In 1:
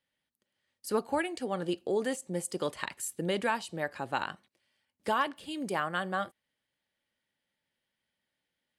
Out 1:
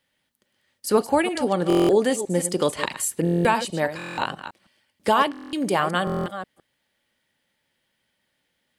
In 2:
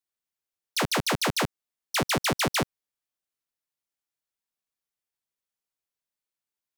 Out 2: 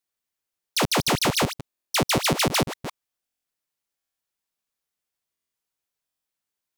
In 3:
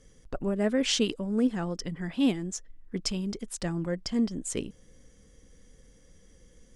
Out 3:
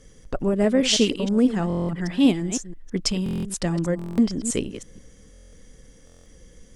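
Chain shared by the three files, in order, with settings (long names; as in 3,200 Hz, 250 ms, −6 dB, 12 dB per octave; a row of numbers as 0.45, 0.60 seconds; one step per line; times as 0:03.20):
delay that plays each chunk backwards 161 ms, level −11 dB
dynamic equaliser 1,600 Hz, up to −5 dB, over −44 dBFS, Q 2
buffer that repeats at 0:01.68/0:03.24/0:03.97/0:05.32/0:06.05, samples 1,024, times 8
loudness normalisation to −23 LKFS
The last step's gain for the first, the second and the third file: +11.0, +4.5, +7.0 decibels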